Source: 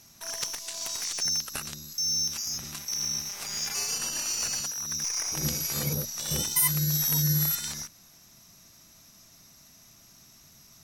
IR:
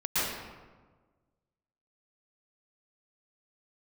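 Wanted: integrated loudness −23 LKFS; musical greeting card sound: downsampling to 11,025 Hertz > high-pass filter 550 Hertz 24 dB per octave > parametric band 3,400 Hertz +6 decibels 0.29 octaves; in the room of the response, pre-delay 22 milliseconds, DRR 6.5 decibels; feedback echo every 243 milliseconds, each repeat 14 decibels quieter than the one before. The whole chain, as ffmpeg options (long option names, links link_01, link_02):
-filter_complex "[0:a]aecho=1:1:243|486:0.2|0.0399,asplit=2[link_01][link_02];[1:a]atrim=start_sample=2205,adelay=22[link_03];[link_02][link_03]afir=irnorm=-1:irlink=0,volume=-17.5dB[link_04];[link_01][link_04]amix=inputs=2:normalize=0,aresample=11025,aresample=44100,highpass=frequency=550:width=0.5412,highpass=frequency=550:width=1.3066,equalizer=frequency=3400:width_type=o:width=0.29:gain=6,volume=13dB"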